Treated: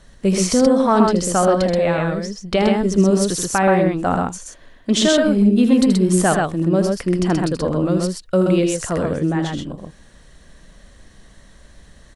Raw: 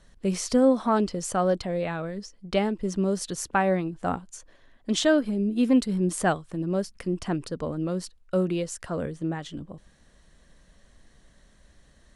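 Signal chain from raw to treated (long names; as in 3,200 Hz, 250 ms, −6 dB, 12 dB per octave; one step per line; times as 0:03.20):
brickwall limiter −16 dBFS, peak gain reduction 6.5 dB
on a send: loudspeakers that aren't time-aligned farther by 27 metres −8 dB, 44 metres −3 dB
on the sum: level +8.5 dB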